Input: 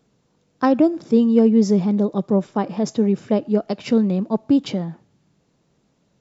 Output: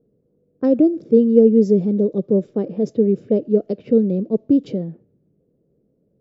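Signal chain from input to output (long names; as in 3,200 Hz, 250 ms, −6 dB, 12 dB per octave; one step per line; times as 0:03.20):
low-pass that shuts in the quiet parts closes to 1,000 Hz, open at −14 dBFS
low shelf with overshoot 660 Hz +11 dB, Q 3
level −12.5 dB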